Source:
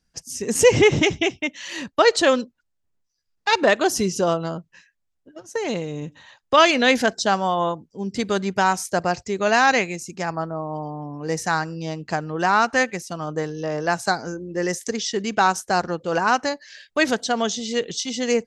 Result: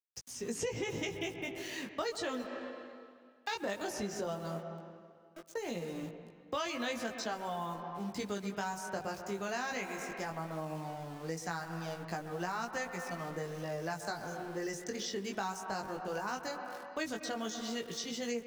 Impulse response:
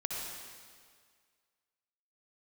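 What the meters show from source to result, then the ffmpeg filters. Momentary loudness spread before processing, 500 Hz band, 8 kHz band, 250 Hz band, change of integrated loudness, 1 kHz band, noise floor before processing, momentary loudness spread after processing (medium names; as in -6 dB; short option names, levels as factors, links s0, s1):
13 LU, -17.5 dB, -15.5 dB, -15.0 dB, -17.5 dB, -17.5 dB, -74 dBFS, 7 LU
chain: -filter_complex "[0:a]aeval=exprs='val(0)*gte(abs(val(0)),0.0141)':c=same,flanger=delay=17:depth=3.4:speed=0.16,asplit=2[s0][s1];[1:a]atrim=start_sample=2205,lowpass=2600,adelay=129[s2];[s1][s2]afir=irnorm=-1:irlink=0,volume=0.237[s3];[s0][s3]amix=inputs=2:normalize=0,acrossover=split=160|6000[s4][s5][s6];[s4]acompressor=threshold=0.00794:ratio=4[s7];[s5]acompressor=threshold=0.0355:ratio=4[s8];[s6]acompressor=threshold=0.00708:ratio=4[s9];[s7][s8][s9]amix=inputs=3:normalize=0,volume=0.447"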